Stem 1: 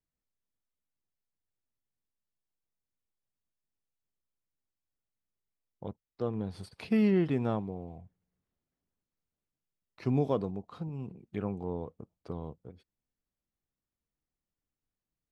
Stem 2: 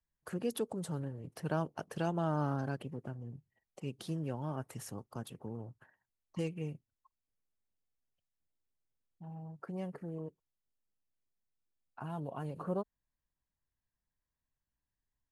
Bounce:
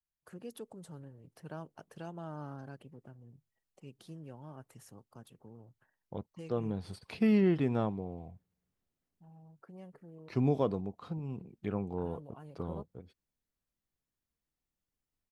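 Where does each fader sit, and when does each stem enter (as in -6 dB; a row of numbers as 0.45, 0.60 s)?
-0.5, -10.0 dB; 0.30, 0.00 s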